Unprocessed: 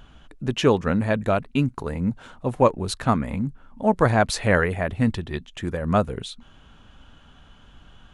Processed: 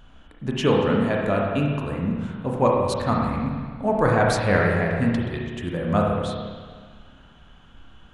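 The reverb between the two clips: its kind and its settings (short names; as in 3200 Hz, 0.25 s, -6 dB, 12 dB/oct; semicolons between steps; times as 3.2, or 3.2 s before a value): spring tank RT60 1.7 s, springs 30/34/54 ms, chirp 55 ms, DRR -2 dB; gain -3.5 dB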